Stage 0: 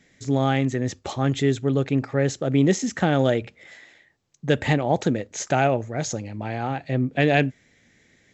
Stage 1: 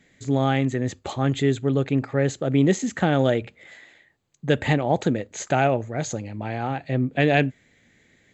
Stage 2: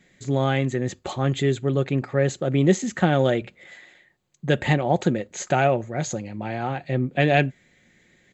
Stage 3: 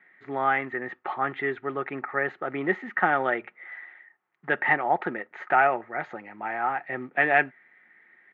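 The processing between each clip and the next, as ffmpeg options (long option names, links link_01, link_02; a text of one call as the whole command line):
ffmpeg -i in.wav -af "equalizer=frequency=5500:width=5.9:gain=-12" out.wav
ffmpeg -i in.wav -af "aecho=1:1:5.5:0.35" out.wav
ffmpeg -i in.wav -af "acrusher=bits=8:mode=log:mix=0:aa=0.000001,highpass=460,equalizer=frequency=540:width_type=q:width=4:gain=-9,equalizer=frequency=840:width_type=q:width=4:gain=6,equalizer=frequency=1300:width_type=q:width=4:gain=9,equalizer=frequency=1900:width_type=q:width=4:gain=8,lowpass=frequency=2200:width=0.5412,lowpass=frequency=2200:width=1.3066,volume=-1dB" out.wav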